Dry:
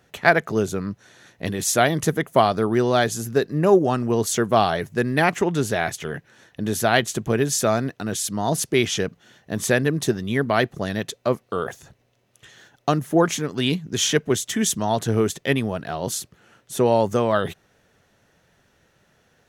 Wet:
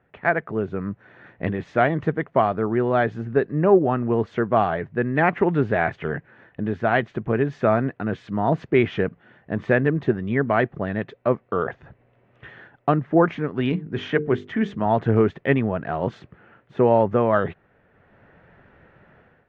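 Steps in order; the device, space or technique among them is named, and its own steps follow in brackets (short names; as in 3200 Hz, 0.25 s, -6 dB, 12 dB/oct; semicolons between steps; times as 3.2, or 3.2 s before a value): 13.69–14.86 notches 50/100/150/200/250/300/350/400/450 Hz; action camera in a waterproof case (LPF 2200 Hz 24 dB/oct; AGC gain up to 14 dB; gain -4.5 dB; AAC 64 kbps 44100 Hz)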